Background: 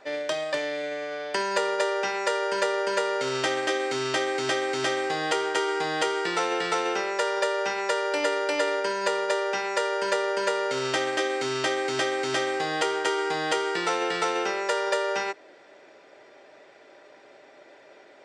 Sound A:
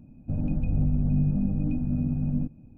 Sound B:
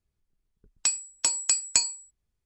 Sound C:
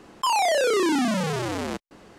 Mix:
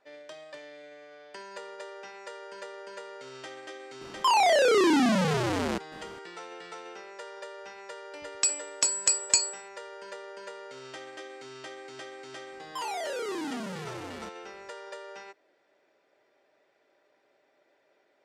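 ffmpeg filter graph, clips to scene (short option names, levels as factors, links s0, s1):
-filter_complex "[3:a]asplit=2[s0][s1];[0:a]volume=0.141[s2];[s0]acrossover=split=6400[s3][s4];[s4]acompressor=threshold=0.00794:ratio=4:attack=1:release=60[s5];[s3][s5]amix=inputs=2:normalize=0[s6];[2:a]highpass=f=51:w=0.5412,highpass=f=51:w=1.3066[s7];[s6]atrim=end=2.18,asetpts=PTS-STARTPTS,afade=t=in:d=0.004:c=hsin,afade=t=out:st=2.176:d=0.004:c=hsin,adelay=176841S[s8];[s7]atrim=end=2.45,asetpts=PTS-STARTPTS,volume=0.944,afade=t=in:d=0.004:c=hsin,afade=t=out:st=2.446:d=0.004:c=hsin,adelay=7580[s9];[s1]atrim=end=2.18,asetpts=PTS-STARTPTS,volume=0.224,afade=t=in:d=0.004:c=hsin,afade=t=out:st=2.176:d=0.004:c=hsin,adelay=552132S[s10];[s2][s8][s9][s10]amix=inputs=4:normalize=0"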